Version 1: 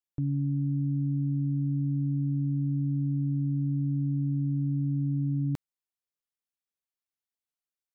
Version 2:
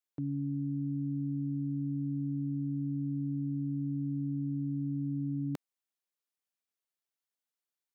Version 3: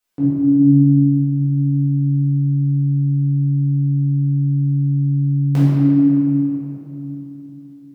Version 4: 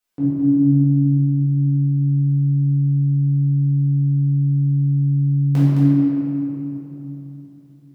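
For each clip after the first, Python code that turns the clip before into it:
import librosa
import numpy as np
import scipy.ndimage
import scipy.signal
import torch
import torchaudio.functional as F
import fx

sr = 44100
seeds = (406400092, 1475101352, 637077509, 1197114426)

y1 = scipy.signal.sosfilt(scipy.signal.butter(2, 220.0, 'highpass', fs=sr, output='sos'), x)
y2 = fx.room_shoebox(y1, sr, seeds[0], volume_m3=190.0, walls='hard', distance_m=1.9)
y2 = y2 * 10.0 ** (9.0 / 20.0)
y3 = y2 + 10.0 ** (-6.0 / 20.0) * np.pad(y2, (int(214 * sr / 1000.0), 0))[:len(y2)]
y3 = y3 * 10.0 ** (-2.5 / 20.0)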